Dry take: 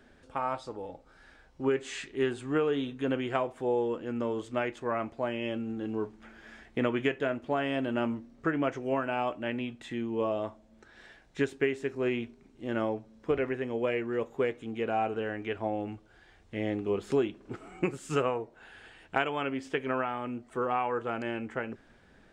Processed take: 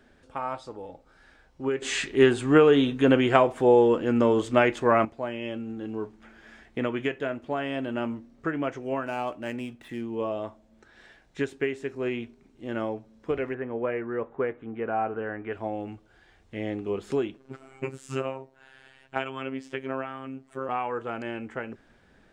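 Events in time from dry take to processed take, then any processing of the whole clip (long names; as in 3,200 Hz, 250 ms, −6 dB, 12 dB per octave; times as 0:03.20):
0:01.82–0:05.05: clip gain +10.5 dB
0:09.06–0:10.15: running median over 9 samples
0:13.54–0:15.53: low-pass with resonance 1,500 Hz, resonance Q 1.5
0:17.37–0:20.69: phases set to zero 133 Hz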